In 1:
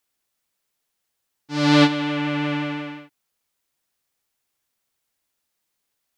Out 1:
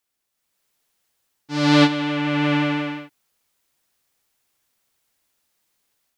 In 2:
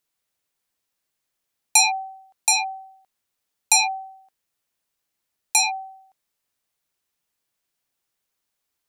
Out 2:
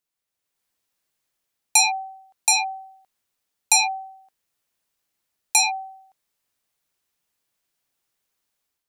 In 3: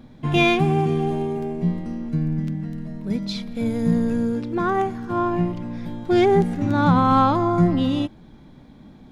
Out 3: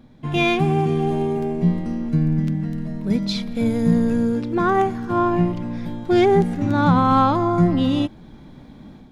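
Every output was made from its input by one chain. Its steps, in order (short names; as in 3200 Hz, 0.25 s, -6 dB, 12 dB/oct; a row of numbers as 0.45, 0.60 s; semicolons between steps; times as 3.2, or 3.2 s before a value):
AGC gain up to 8 dB; match loudness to -20 LUFS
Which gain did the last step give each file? -2.0, -6.5, -3.5 dB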